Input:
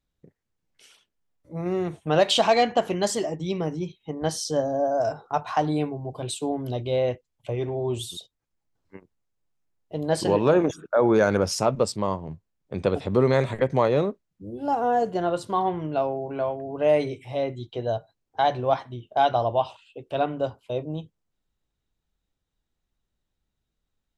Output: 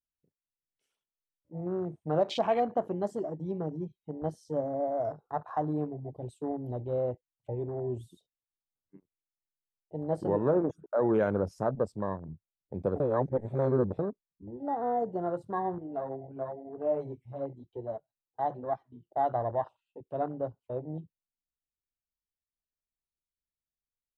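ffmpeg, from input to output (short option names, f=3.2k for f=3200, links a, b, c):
-filter_complex "[0:a]asettb=1/sr,asplit=3[a][b][c];[a]atrim=end=15.784[d];[b]atrim=start=15.78:end=19.07,asetpts=PTS-STARTPTS,afade=t=in:d=0.004:c=qsin,afade=t=out:st=3.286:d=0.004:c=qsin,flanger=delay=2.5:depth=6.2:regen=-5:speed=1:shape=sinusoidal[e];[c]atrim=start=19.066[f];[d][e]acrossfade=d=0.004:c1=hsin:c2=qsin[g];[g][f]acrossfade=d=0.004:c1=qsin:c2=hsin,asplit=3[h][i][j];[h]atrim=end=13.002[k];[i]atrim=start=12.998:end=13.992,asetpts=PTS-STARTPTS,areverse[l];[j]atrim=start=13.988[m];[k][l]acrossfade=d=0.004:c1=hsin:c2=hsin[n];[n][m]acrossfade=d=0.004:c1=hsin:c2=hsin,equalizer=f=3.8k:w=0.44:g=-9,afwtdn=0.0224,volume=-6dB"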